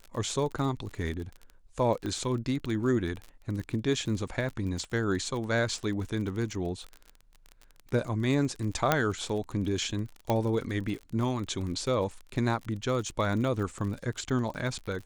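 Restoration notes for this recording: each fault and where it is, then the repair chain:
crackle 36 per s -35 dBFS
2.06 s: pop -22 dBFS
8.92 s: pop -8 dBFS
10.30 s: pop -14 dBFS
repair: de-click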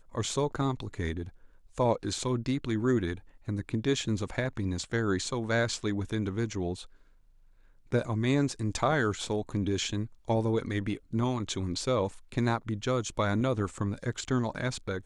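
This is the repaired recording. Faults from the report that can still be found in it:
nothing left

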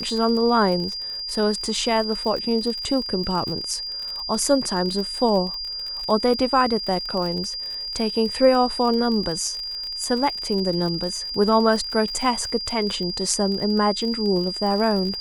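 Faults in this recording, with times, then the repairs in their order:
crackle 45 per s -28 dBFS
whine 4.8 kHz -28 dBFS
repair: de-click; band-stop 4.8 kHz, Q 30

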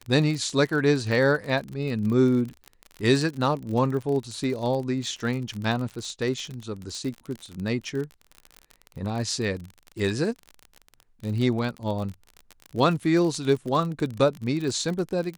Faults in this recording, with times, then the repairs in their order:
crackle 38 per s -30 dBFS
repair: de-click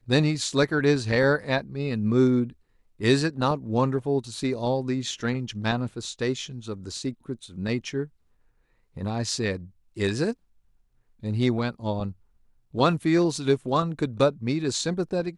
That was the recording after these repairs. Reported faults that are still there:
nothing left

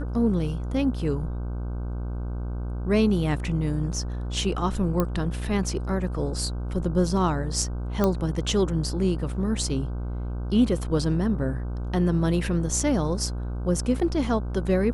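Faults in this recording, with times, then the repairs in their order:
buzz 60 Hz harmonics 26 -30 dBFS
5.00 s: pop -11 dBFS
8.04 s: pop -10 dBFS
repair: de-click; de-hum 60 Hz, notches 26

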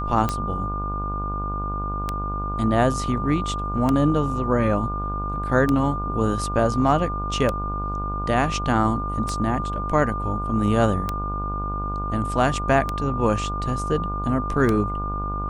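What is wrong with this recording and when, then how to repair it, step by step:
buzz 50 Hz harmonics 29 -29 dBFS
tick 33 1/3 rpm -10 dBFS
whine 1.2 kHz -28 dBFS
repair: de-click; de-hum 50 Hz, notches 29; band-stop 1.2 kHz, Q 30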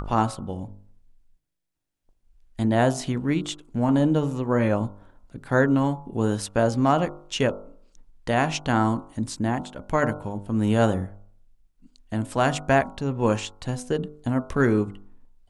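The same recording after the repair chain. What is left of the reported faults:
nothing left

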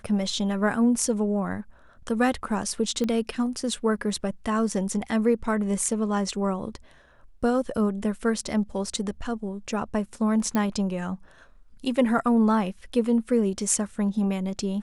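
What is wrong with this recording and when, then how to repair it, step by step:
3.04 s: pop -16 dBFS
10.55 s: pop -13 dBFS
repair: de-click

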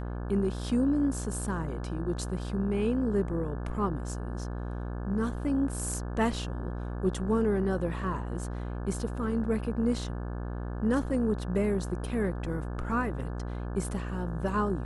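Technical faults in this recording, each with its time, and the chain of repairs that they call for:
buzz 60 Hz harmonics 29 -35 dBFS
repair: de-hum 60 Hz, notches 29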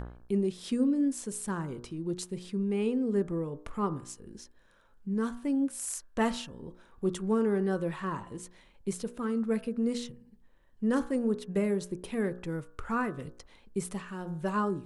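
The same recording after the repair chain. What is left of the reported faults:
nothing left

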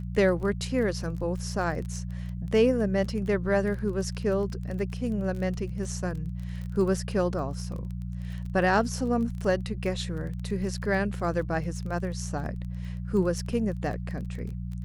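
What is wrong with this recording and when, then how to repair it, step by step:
crackle 22 per s -35 dBFS
hum 60 Hz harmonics 3 -34 dBFS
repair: de-click; de-hum 60 Hz, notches 3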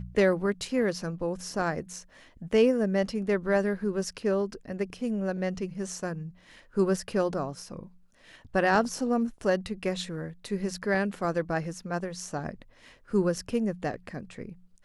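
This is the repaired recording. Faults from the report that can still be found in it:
nothing left

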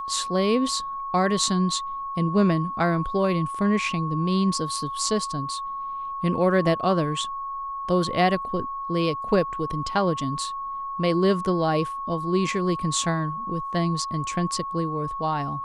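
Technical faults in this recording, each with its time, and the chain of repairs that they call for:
whine 1.1 kHz -29 dBFS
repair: band-stop 1.1 kHz, Q 30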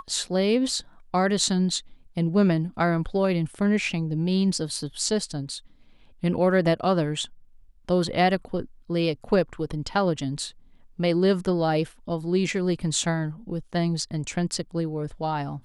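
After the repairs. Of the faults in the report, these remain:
nothing left

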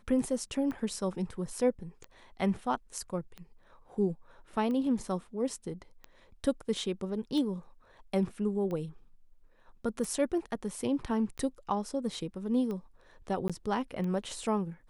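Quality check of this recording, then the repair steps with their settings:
tick 45 rpm -27 dBFS
13.48–13.50 s: dropout 16 ms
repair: de-click; interpolate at 13.48 s, 16 ms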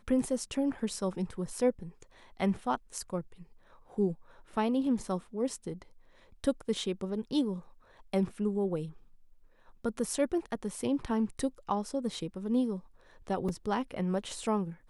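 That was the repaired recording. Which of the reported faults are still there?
nothing left

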